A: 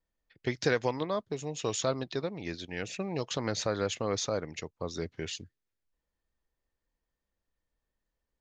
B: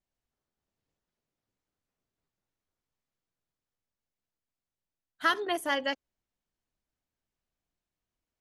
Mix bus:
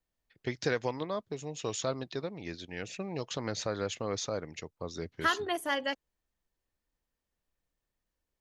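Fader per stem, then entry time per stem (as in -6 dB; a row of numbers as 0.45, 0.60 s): -3.0, -2.0 dB; 0.00, 0.00 s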